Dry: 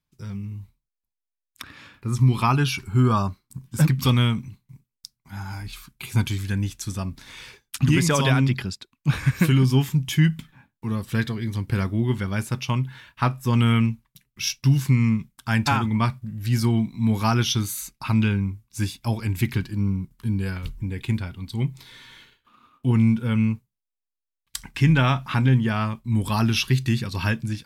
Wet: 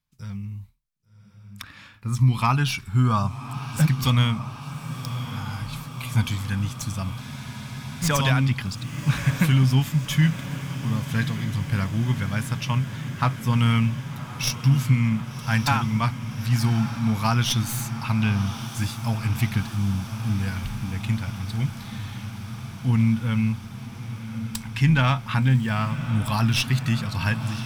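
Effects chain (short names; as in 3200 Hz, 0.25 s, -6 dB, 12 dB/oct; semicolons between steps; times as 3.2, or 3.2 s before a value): tracing distortion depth 0.044 ms; bell 370 Hz -12 dB 0.68 oct; diffused feedback echo 1.133 s, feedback 76%, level -12 dB; spectral freeze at 7.21, 0.81 s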